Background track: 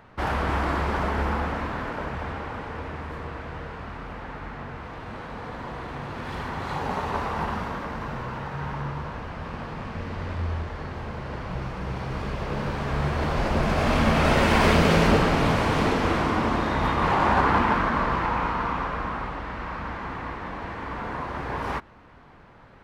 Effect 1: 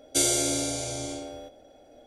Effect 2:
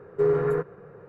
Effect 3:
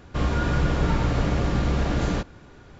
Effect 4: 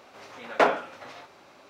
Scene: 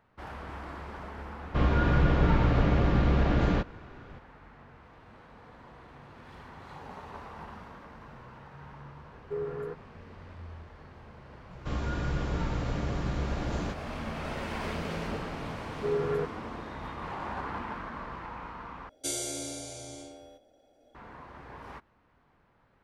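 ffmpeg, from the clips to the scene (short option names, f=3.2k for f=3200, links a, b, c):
-filter_complex "[3:a]asplit=2[a][b];[2:a]asplit=2[c][d];[0:a]volume=-16dB[e];[a]lowpass=3.2k[f];[d]dynaudnorm=f=160:g=3:m=11.5dB[g];[e]asplit=2[h][i];[h]atrim=end=18.894[j];[1:a]atrim=end=2.06,asetpts=PTS-STARTPTS,volume=-10dB[k];[i]atrim=start=20.946[l];[f]atrim=end=2.79,asetpts=PTS-STARTPTS,volume=-1dB,afade=t=in:d=0.004:c=hsin,afade=t=out:st=2.786:d=0.004:c=hsin,adelay=1400[m];[c]atrim=end=1.08,asetpts=PTS-STARTPTS,volume=-12.5dB,afade=t=in:d=0.004:c=hsin,afade=t=out:st=1.076:d=0.004:c=hsin,adelay=9120[n];[b]atrim=end=2.79,asetpts=PTS-STARTPTS,volume=-9dB,afade=t=in:d=0.004:c=hsin,afade=t=out:st=2.786:d=0.004:c=hsin,adelay=11510[o];[g]atrim=end=1.08,asetpts=PTS-STARTPTS,volume=-16dB,afade=t=in:d=0.004:c=hsin,afade=t=out:st=1.076:d=0.004:c=hsin,adelay=15640[p];[j][k]acrossfade=d=0.004:c1=hsin:c2=hsin[q];[q][l]acrossfade=d=0.004:c1=hsin:c2=hsin[r];[r][m][n][o][p]amix=inputs=5:normalize=0"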